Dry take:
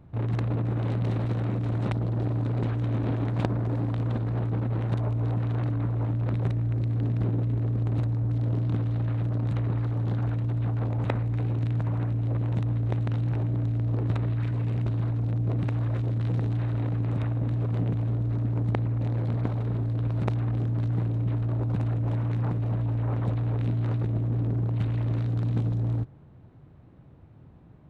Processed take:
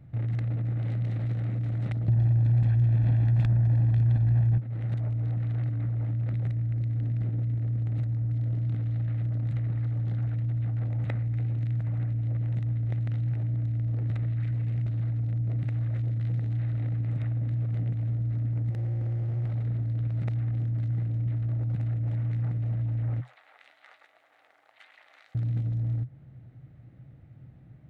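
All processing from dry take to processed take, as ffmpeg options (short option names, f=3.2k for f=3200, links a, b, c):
-filter_complex "[0:a]asettb=1/sr,asplit=3[a][b][c];[a]atrim=end=2.084[d];[b]atrim=start=2.08:end=4.58,asetpts=PTS-STARTPTS,afade=t=in:d=0.004:c=qsin,afade=t=out:st=2.496:d=0.004:c=qsin,lowshelf=f=65:g=11,aecho=1:1:1.2:0.81,atrim=end_sample=110250,aeval=exprs='0.473*sin(PI/2*2.24*val(0)/0.473)':c=same[e];[c]atrim=start=4.576[f];[d][e]acrossfade=d=0.004:c1=hsin:c2=qsin[g];[g][f]acrossfade=d=0.004:c1=qsin:c2=hsin,asettb=1/sr,asplit=3[h][i][j];[h]atrim=end=18.704[k];[i]atrim=start=18.7:end=19.49,asetpts=PTS-STARTPTS,afade=t=in:d=0.004:c=qsin,afade=t=out:st=0.786:d=0.004:c=qsin,highpass=f=210:p=1,aemphasis=mode=reproduction:type=riaa,asoftclip=type=hard:threshold=-27dB[l];[j]atrim=start=19.486[m];[k][l]acrossfade=d=0.004:c1=hsin:c2=qsin[n];[n][m]acrossfade=d=0.004:c1=qsin:c2=hsin,asettb=1/sr,asplit=3[o][p][q];[o]atrim=end=23.214[r];[p]atrim=start=23.21:end=25.35,asetpts=PTS-STARTPTS,afade=t=in:d=0.004:c=qsin,afade=t=out:st=2.136:d=0.004:c=qsin,highpass=f=850:w=0.5412,highpass=f=850:w=1.3066,flanger=delay=6.6:depth=3.7:regen=76:speed=1.8:shape=sinusoidal[s];[q]atrim=start=25.346[t];[r][s]acrossfade=d=0.004:c1=hsin:c2=qsin[u];[u][t]acrossfade=d=0.004:c1=qsin:c2=hsin,equalizer=f=125:t=o:w=0.33:g=11,equalizer=f=400:t=o:w=0.33:g=-7,equalizer=f=1k:t=o:w=0.33:g=-12,equalizer=f=2k:t=o:w=0.33:g=7,acompressor=threshold=-26dB:ratio=2.5,volume=-3dB"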